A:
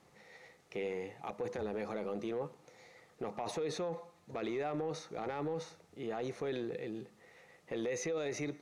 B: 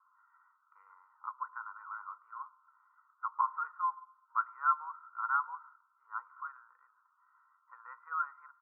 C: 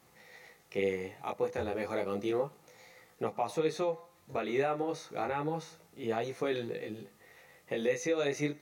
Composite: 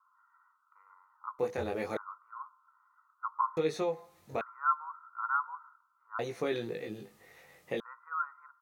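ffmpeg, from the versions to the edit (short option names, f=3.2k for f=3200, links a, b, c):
-filter_complex "[2:a]asplit=3[a][b][c];[1:a]asplit=4[d][e][f][g];[d]atrim=end=1.392[h];[a]atrim=start=1.388:end=1.972[i];[e]atrim=start=1.968:end=3.572[j];[b]atrim=start=3.568:end=4.412[k];[f]atrim=start=4.408:end=6.192[l];[c]atrim=start=6.188:end=7.802[m];[g]atrim=start=7.798[n];[h][i]acrossfade=d=0.004:c1=hsin:c2=hsin[o];[o][j]acrossfade=d=0.004:c1=hsin:c2=hsin[p];[p][k]acrossfade=d=0.004:c1=hsin:c2=hsin[q];[q][l]acrossfade=d=0.004:c1=hsin:c2=hsin[r];[r][m]acrossfade=d=0.004:c1=hsin:c2=hsin[s];[s][n]acrossfade=d=0.004:c1=hsin:c2=hsin"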